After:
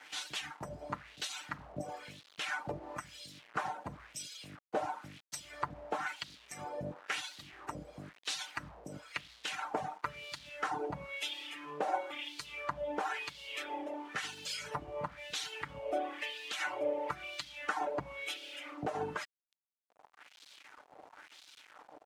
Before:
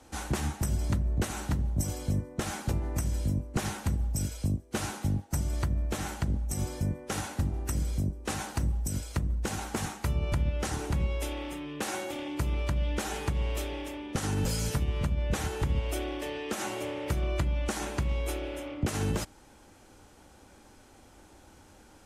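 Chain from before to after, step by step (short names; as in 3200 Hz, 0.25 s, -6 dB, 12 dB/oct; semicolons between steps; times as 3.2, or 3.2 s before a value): reverb removal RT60 1.9 s; comb 6.7 ms, depth 51%; in parallel at 0 dB: compressor 12:1, threshold -40 dBFS, peak gain reduction 17.5 dB; on the sum: bit-crush 8-bit; LFO band-pass sine 0.99 Hz 640–4000 Hz; gain +5 dB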